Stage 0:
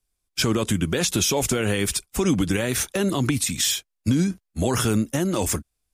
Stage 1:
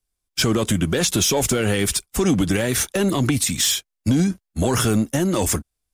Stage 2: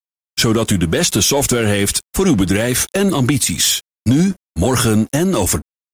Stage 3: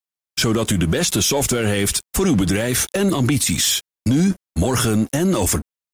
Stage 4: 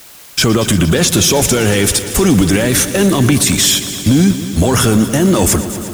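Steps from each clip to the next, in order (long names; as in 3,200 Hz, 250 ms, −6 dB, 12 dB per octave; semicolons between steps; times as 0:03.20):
notch filter 2,500 Hz, Q 25; leveller curve on the samples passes 1
dead-zone distortion −47 dBFS; level +5 dB
brickwall limiter −13 dBFS, peak gain reduction 8 dB; level +2.5 dB
in parallel at −4 dB: bit-depth reduction 6 bits, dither triangular; on the sum: echo machine with several playback heads 116 ms, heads first and second, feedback 72%, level −16.5 dB; level +2 dB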